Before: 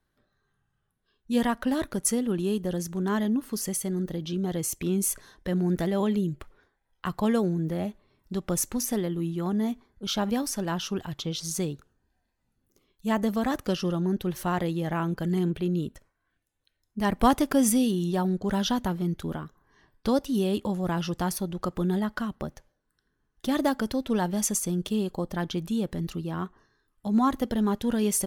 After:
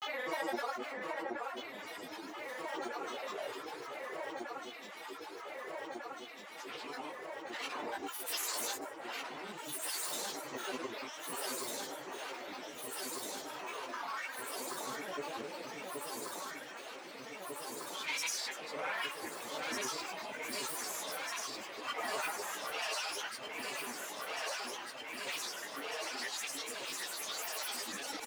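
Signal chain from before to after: partial rectifier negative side -12 dB; Bessel high-pass 910 Hz, order 4; treble shelf 3.9 kHz -8 dB; comb 4.4 ms; Paulstretch 6.5×, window 0.05 s, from 7.30 s; granulator, pitch spread up and down by 12 st; echo whose repeats swap between lows and highs 774 ms, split 2.3 kHz, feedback 88%, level -4.5 dB; three bands compressed up and down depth 40%; trim +1 dB

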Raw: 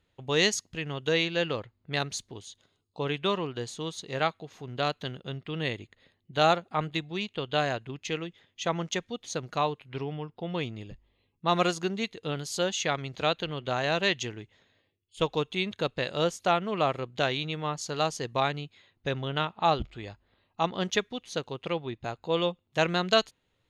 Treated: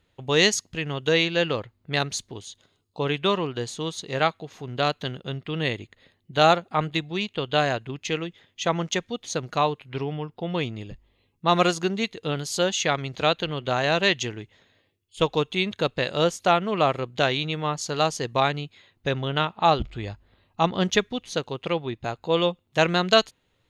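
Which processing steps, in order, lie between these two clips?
19.85–21.35 s: bass shelf 160 Hz +7.5 dB; trim +5 dB

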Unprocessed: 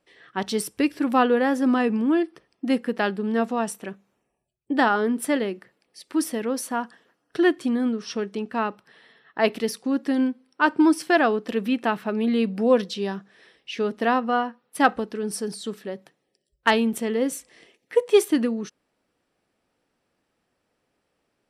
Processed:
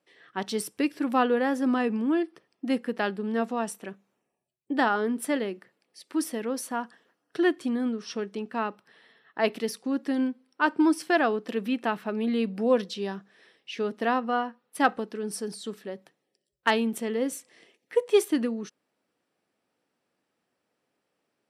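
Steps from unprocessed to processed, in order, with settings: high-pass 140 Hz; trim -4 dB

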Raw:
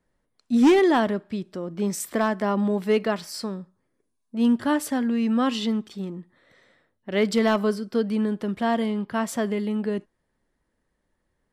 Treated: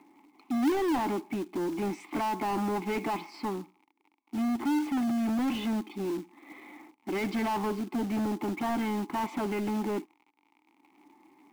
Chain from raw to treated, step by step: gate with hold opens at -55 dBFS; high-pass 230 Hz 6 dB/octave; treble shelf 3.2 kHz -3.5 dB; upward compressor, threshold -43 dBFS; comb of notches 470 Hz; crackle 59 per s -49 dBFS; vowel filter u; overdrive pedal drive 36 dB, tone 1.2 kHz, clips at -19.5 dBFS; short-mantissa float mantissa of 2-bit; trim -1.5 dB

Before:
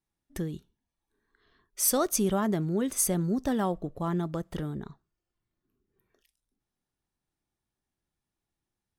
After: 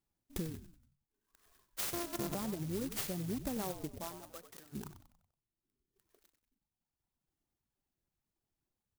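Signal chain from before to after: 1.93–2.35 s: sorted samples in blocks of 128 samples; reverb removal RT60 2 s; compression 10:1, threshold -36 dBFS, peak gain reduction 15.5 dB; 3.99–4.72 s: band-pass filter 660 Hz -> 3 kHz, Q 1.4; on a send: frequency-shifting echo 94 ms, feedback 45%, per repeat -59 Hz, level -11 dB; on the sum: sampling jitter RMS 0.13 ms; trim +1 dB

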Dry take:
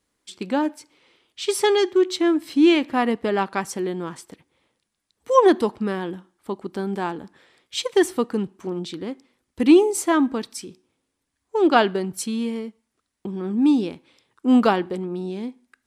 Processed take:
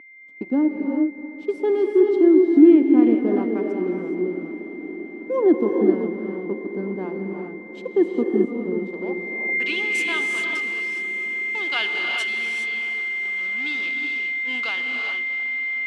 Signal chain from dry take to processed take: fade out at the end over 1.57 s; in parallel at +3 dB: peak limiter -14.5 dBFS, peak gain reduction 12 dB; on the sum: crossover distortion -26.5 dBFS; whistle 2.1 kHz -19 dBFS; band-pass sweep 290 Hz -> 3 kHz, 8.69–9.74 s; echo that smears into a reverb 712 ms, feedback 65%, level -15 dB; gated-style reverb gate 440 ms rising, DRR 2 dB

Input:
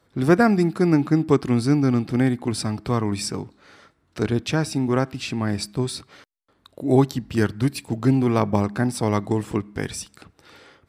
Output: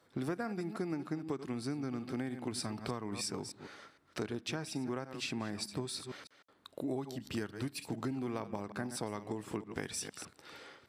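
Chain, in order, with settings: chunks repeated in reverse 153 ms, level -13 dB; high-pass 230 Hz 6 dB/octave; compression 12:1, threshold -31 dBFS, peak gain reduction 19 dB; trim -3 dB

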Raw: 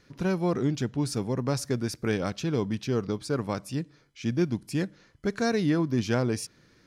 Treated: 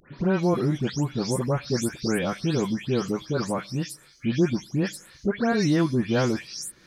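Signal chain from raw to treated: delay that grows with frequency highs late, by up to 250 ms; tape noise reduction on one side only encoder only; trim +4 dB

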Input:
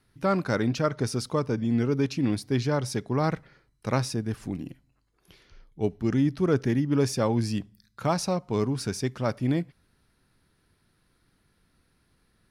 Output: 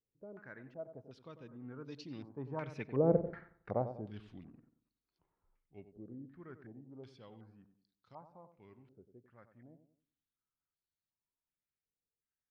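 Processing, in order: Doppler pass-by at 3.28 s, 19 m/s, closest 1.3 m; tape echo 94 ms, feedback 45%, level -8.5 dB, low-pass 1 kHz; step-sequenced low-pass 2.7 Hz 500–4500 Hz; trim +3.5 dB

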